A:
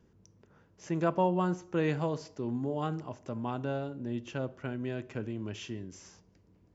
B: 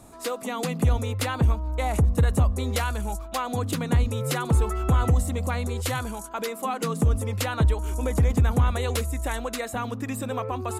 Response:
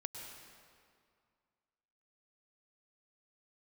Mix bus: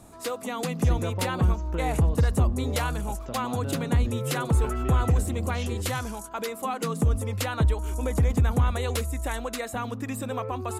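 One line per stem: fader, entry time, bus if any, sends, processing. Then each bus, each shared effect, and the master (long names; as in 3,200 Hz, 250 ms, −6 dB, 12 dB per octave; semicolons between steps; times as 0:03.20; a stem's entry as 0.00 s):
+3.0 dB, 0.00 s, no send, downward compressor 3 to 1, threshold −36 dBFS, peak gain reduction 11 dB
−1.5 dB, 0.00 s, no send, no processing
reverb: not used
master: no processing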